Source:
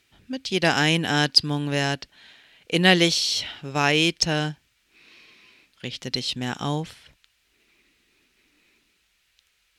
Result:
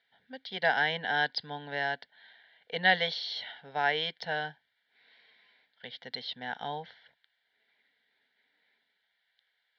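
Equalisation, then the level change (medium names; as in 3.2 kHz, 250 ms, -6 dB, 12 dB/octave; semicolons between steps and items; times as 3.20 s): cabinet simulation 480–2900 Hz, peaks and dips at 580 Hz -9 dB, 830 Hz -3 dB, 1.3 kHz -9 dB, 1.9 kHz -4 dB, 2.8 kHz -6 dB; static phaser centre 1.7 kHz, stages 8; +2.5 dB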